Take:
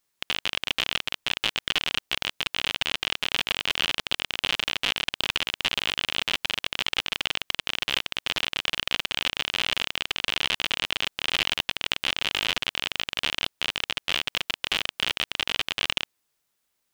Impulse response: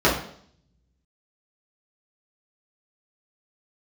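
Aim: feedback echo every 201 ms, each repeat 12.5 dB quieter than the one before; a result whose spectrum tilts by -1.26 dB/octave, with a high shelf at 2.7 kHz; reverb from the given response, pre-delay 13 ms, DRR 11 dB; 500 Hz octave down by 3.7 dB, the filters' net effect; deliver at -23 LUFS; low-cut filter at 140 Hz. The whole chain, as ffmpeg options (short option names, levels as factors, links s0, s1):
-filter_complex "[0:a]highpass=140,equalizer=f=500:t=o:g=-5,highshelf=f=2700:g=4.5,aecho=1:1:201|402|603:0.237|0.0569|0.0137,asplit=2[s0][s1];[1:a]atrim=start_sample=2205,adelay=13[s2];[s1][s2]afir=irnorm=-1:irlink=0,volume=0.0266[s3];[s0][s3]amix=inputs=2:normalize=0,volume=1.12"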